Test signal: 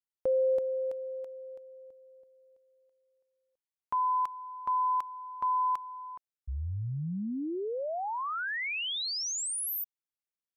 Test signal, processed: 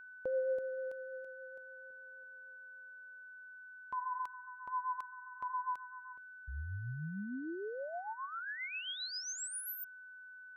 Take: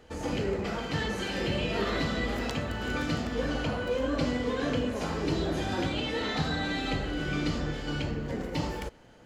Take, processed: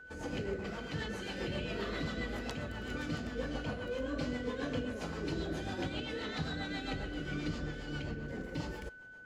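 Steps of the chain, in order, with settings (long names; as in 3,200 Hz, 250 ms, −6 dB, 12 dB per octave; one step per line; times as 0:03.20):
rotating-speaker cabinet horn 7.5 Hz
steady tone 1,500 Hz −44 dBFS
level −6 dB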